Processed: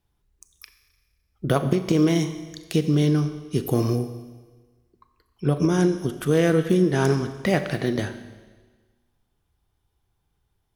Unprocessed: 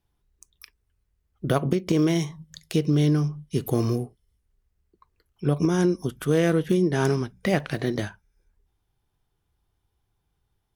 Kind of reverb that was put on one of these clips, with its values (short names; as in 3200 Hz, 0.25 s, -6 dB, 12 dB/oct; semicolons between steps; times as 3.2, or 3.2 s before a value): Schroeder reverb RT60 1.4 s, combs from 29 ms, DRR 10 dB; gain +1.5 dB